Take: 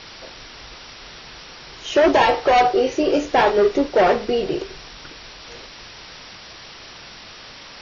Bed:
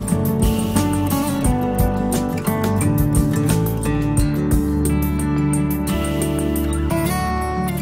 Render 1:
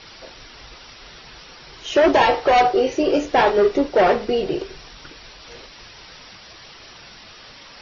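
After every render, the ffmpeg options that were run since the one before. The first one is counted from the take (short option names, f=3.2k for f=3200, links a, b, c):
-af "afftdn=nr=6:nf=-41"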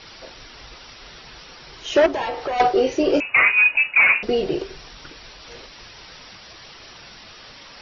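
-filter_complex "[0:a]asettb=1/sr,asplit=3[a][b][c];[a]atrim=end=2.064[d];[b]atrim=start=2.06:end=2.6,asetpts=PTS-STARTPTS,afade=t=in:d=0.004:c=qsin,afade=t=out:st=0.536:d=0.004:c=qsin,acompressor=threshold=-26dB:ratio=3:attack=3.2:release=140:knee=1:detection=peak[e];[c]atrim=start=2.596[f];[d][e]acrossfade=d=0.004:c1=hsin:c2=qsin[g];[g][f]acrossfade=d=0.004:c1=qsin:c2=hsin,asettb=1/sr,asplit=3[h][i][j];[h]atrim=end=3.204[k];[i]atrim=start=3.2:end=4.23,asetpts=PTS-STARTPTS,afade=t=in:d=0.004:c=qsin,afade=t=out:st=1.026:d=0.004:c=qsin,lowpass=f=2.5k:t=q:w=0.5098,lowpass=f=2.5k:t=q:w=0.6013,lowpass=f=2.5k:t=q:w=0.9,lowpass=f=2.5k:t=q:w=2.563,afreqshift=-2900[l];[j]atrim=start=4.226[m];[k][l]acrossfade=d=0.004:c1=hsin:c2=qsin[n];[n][m]acrossfade=d=0.004:c1=qsin:c2=hsin"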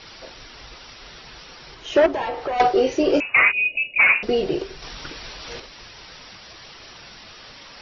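-filter_complex "[0:a]asettb=1/sr,asplit=3[a][b][c];[a]atrim=end=1.744[d];[b]atrim=start=1.74:end=2.6,asetpts=PTS-STARTPTS,afade=t=in:d=0.004:c=qsin,afade=t=out:st=0.856:d=0.004:c=qsin,highshelf=f=3.8k:g=-8[e];[c]atrim=start=2.596[f];[d][e]acrossfade=d=0.004:c1=hsin:c2=qsin[g];[g][f]acrossfade=d=0.004:c1=qsin:c2=hsin,asplit=3[h][i][j];[h]afade=t=out:st=3.51:d=0.02[k];[i]asuperstop=centerf=1300:order=8:qfactor=0.63,afade=t=in:st=3.51:d=0.02,afade=t=out:st=3.98:d=0.02[l];[j]afade=t=in:st=3.98:d=0.02[m];[k][l][m]amix=inputs=3:normalize=0,asettb=1/sr,asplit=3[n][o][p];[n]atrim=end=4.824[q];[o]atrim=start=4.82:end=5.6,asetpts=PTS-STARTPTS,afade=t=in:d=0.004:c=qsin,afade=t=out:st=0.776:d=0.004:c=qsin,acontrast=33[r];[p]atrim=start=5.596[s];[q][r]acrossfade=d=0.004:c1=hsin:c2=qsin[t];[t][s]acrossfade=d=0.004:c1=qsin:c2=hsin"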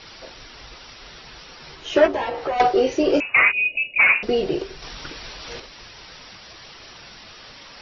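-filter_complex "[0:a]asettb=1/sr,asplit=3[a][b][c];[a]atrim=end=1.594[d];[b]atrim=start=1.59:end=2.54,asetpts=PTS-STARTPTS,afade=t=in:d=0.004:c=qsin,afade=t=out:st=0.946:d=0.004:c=qsin,asplit=2[e][f];[f]adelay=13,volume=-5dB[g];[e][g]amix=inputs=2:normalize=0,atrim=end_sample=41895[h];[c]atrim=start=2.536[i];[d][h]acrossfade=d=0.004:c1=hsin:c2=qsin[j];[j][i]acrossfade=d=0.004:c1=qsin:c2=hsin"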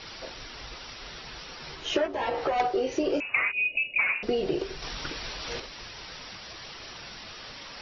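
-af "acompressor=threshold=-23dB:ratio=12"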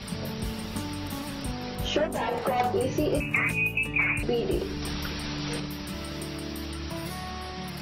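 -filter_complex "[1:a]volume=-16dB[a];[0:a][a]amix=inputs=2:normalize=0"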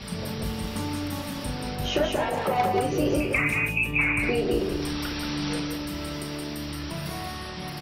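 -filter_complex "[0:a]asplit=2[a][b];[b]adelay=34,volume=-11dB[c];[a][c]amix=inputs=2:normalize=0,aecho=1:1:40.82|180.8:0.282|0.631"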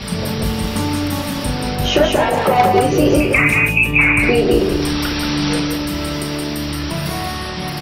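-af "volume=11dB,alimiter=limit=-2dB:level=0:latency=1"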